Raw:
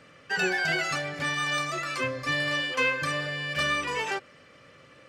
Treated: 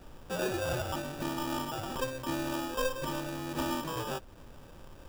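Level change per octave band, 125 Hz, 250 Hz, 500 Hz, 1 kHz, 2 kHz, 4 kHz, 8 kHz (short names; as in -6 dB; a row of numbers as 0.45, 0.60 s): -2.5, +2.0, -2.0, -4.5, -15.0, -9.5, -4.0 dB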